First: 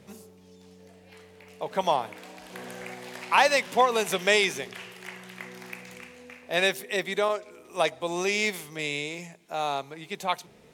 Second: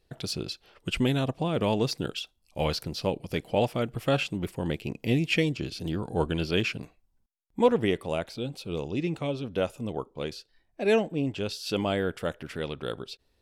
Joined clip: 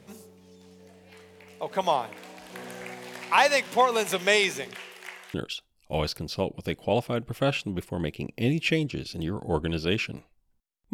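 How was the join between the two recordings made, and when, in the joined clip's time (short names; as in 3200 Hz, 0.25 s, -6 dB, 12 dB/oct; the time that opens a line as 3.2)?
first
4.75–5.34 HPF 260 Hz -> 730 Hz
5.34 switch to second from 2 s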